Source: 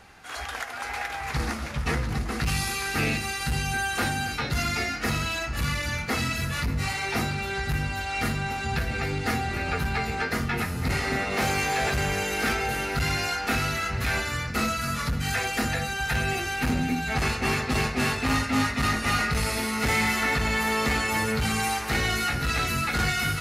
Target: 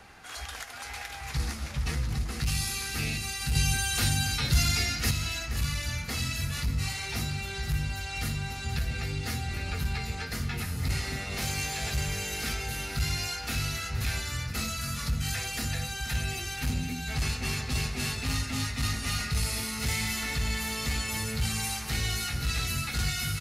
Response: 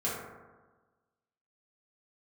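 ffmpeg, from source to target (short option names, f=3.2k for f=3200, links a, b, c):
-filter_complex "[0:a]asettb=1/sr,asplit=3[a][b][c];[a]atrim=end=3.554[d];[b]atrim=start=3.55:end=5.11,asetpts=PTS-STARTPTS,afade=t=in:d=0.004:c=qsin,afade=t=out:st=1.556:d=0.004:c=qsin,acontrast=60[e];[c]atrim=start=5.106[f];[d][e]acrossfade=d=0.004:c1=hsin:c2=qsin[g];[g][f]acrossfade=d=0.004:c1=qsin:c2=hsin,aecho=1:1:472:0.188,acrossover=split=150|3000[h][i][j];[i]acompressor=threshold=-49dB:ratio=2[k];[h][k][j]amix=inputs=3:normalize=0"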